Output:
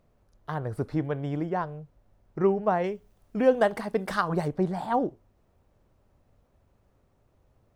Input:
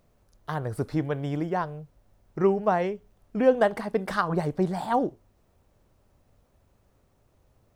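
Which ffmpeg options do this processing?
-af "asetnsamples=n=441:p=0,asendcmd='2.84 highshelf g 2.5;4.48 highshelf g -7.5',highshelf=f=3600:g=-8.5,volume=0.891"

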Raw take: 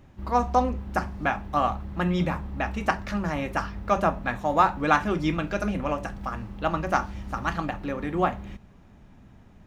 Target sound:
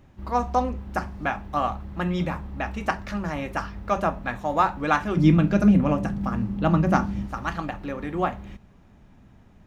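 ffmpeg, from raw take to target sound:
-filter_complex "[0:a]asettb=1/sr,asplit=3[s0][s1][s2];[s0]atrim=end=5.174[s3];[s1]atrim=start=5.17:end=7.27,asetpts=PTS-STARTPTS,afade=t=in:d=0.004:c=qsin,afade=t=out:st=2.096:d=0.004:c=qsin,equalizer=f=180:w=0.7:g=14.5[s4];[s2]atrim=start=7.266[s5];[s3][s4]acrossfade=d=0.004:c1=hsin:c2=qsin[s6];[s6][s5]acrossfade=d=0.004:c1=qsin:c2=hsin,volume=0.891"

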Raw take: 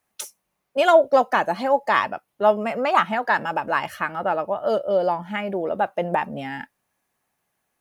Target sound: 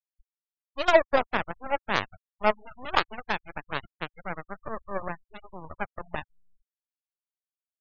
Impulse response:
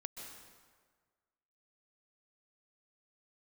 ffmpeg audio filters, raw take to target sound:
-filter_complex "[0:a]asplit=2[s0][s1];[1:a]atrim=start_sample=2205,asetrate=25578,aresample=44100,lowshelf=f=420:g=4.5[s2];[s1][s2]afir=irnorm=-1:irlink=0,volume=0.224[s3];[s0][s3]amix=inputs=2:normalize=0,aeval=exprs='0.794*(cos(1*acos(clip(val(0)/0.794,-1,1)))-cos(1*PI/2))+0.224*(cos(3*acos(clip(val(0)/0.794,-1,1)))-cos(3*PI/2))+0.0178*(cos(7*acos(clip(val(0)/0.794,-1,1)))-cos(7*PI/2))+0.0251*(cos(8*acos(clip(val(0)/0.794,-1,1)))-cos(8*PI/2))':c=same,afftfilt=real='re*gte(hypot(re,im),0.0224)':imag='im*gte(hypot(re,im),0.0224)':win_size=1024:overlap=0.75,volume=0.891"

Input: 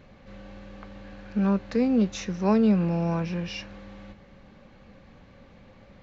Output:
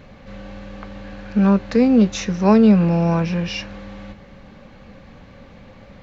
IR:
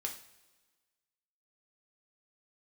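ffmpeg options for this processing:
-af "bandreject=f=360:w=12,volume=2.66"

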